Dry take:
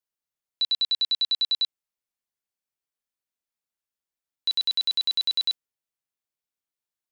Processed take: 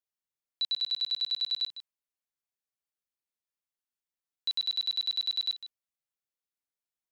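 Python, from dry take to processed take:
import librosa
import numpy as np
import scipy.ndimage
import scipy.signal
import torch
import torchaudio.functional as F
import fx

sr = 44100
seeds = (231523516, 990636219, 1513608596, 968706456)

p1 = fx.low_shelf(x, sr, hz=150.0, db=-11.5, at=(0.63, 1.57))
p2 = p1 + fx.echo_single(p1, sr, ms=153, db=-13.5, dry=0)
y = p2 * librosa.db_to_amplitude(-6.0)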